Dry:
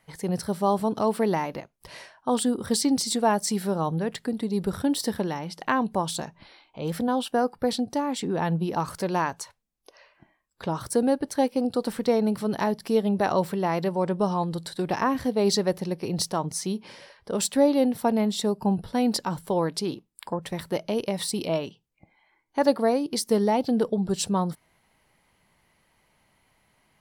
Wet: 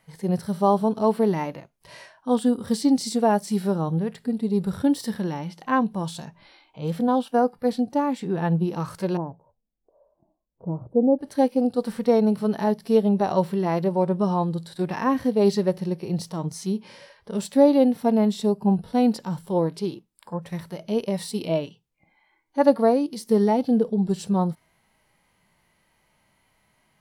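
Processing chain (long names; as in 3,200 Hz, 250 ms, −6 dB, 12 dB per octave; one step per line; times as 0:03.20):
0:09.17–0:11.19: inverse Chebyshev low-pass filter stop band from 1,900 Hz, stop band 50 dB
harmonic and percussive parts rebalanced percussive −15 dB
level +4 dB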